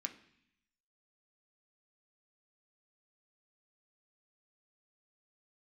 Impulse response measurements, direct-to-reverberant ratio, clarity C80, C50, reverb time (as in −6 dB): 4.0 dB, 16.5 dB, 13.5 dB, 0.65 s